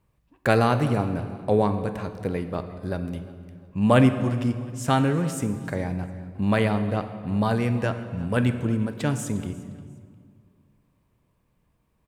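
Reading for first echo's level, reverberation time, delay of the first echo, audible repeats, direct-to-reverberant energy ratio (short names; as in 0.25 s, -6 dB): -21.0 dB, 2.0 s, 0.354 s, 2, 8.5 dB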